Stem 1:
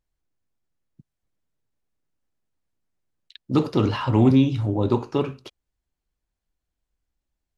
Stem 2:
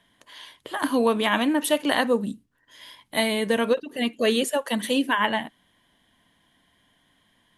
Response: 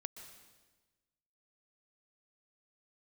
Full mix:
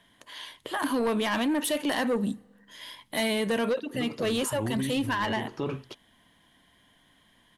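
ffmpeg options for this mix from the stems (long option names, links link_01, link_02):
-filter_complex "[0:a]adelay=450,volume=-2dB[link_01];[1:a]asoftclip=type=tanh:threshold=-19dB,volume=1.5dB,asplit=3[link_02][link_03][link_04];[link_03]volume=-20.5dB[link_05];[link_04]apad=whole_len=354051[link_06];[link_01][link_06]sidechaincompress=threshold=-32dB:ratio=8:attack=16:release=270[link_07];[2:a]atrim=start_sample=2205[link_08];[link_05][link_08]afir=irnorm=-1:irlink=0[link_09];[link_07][link_02][link_09]amix=inputs=3:normalize=0,alimiter=limit=-21.5dB:level=0:latency=1:release=39"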